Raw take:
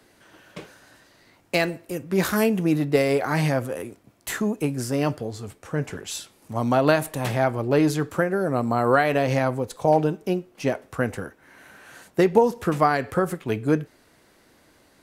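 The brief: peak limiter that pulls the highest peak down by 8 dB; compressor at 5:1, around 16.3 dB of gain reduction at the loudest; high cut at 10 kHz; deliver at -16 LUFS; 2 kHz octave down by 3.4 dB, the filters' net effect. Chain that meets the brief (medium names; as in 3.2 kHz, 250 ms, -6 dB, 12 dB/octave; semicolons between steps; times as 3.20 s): low-pass 10 kHz; peaking EQ 2 kHz -4.5 dB; compression 5:1, threshold -31 dBFS; trim +21 dB; peak limiter -4 dBFS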